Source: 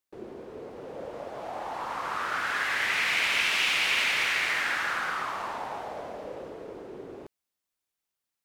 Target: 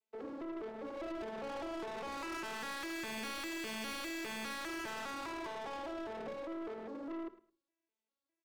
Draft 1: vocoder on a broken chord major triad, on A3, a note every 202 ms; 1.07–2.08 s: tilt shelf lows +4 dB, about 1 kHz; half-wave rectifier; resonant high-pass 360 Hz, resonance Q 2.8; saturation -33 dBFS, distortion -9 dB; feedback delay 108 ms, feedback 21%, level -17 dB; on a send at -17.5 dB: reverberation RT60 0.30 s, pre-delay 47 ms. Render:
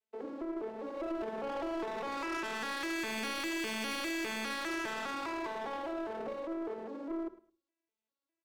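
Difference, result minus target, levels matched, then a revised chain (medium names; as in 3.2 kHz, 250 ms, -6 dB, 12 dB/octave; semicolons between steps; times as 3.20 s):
saturation: distortion -4 dB
vocoder on a broken chord major triad, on A3, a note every 202 ms; 1.07–2.08 s: tilt shelf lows +4 dB, about 1 kHz; half-wave rectifier; resonant high-pass 360 Hz, resonance Q 2.8; saturation -40 dBFS, distortion -5 dB; feedback delay 108 ms, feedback 21%, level -17 dB; on a send at -17.5 dB: reverberation RT60 0.30 s, pre-delay 47 ms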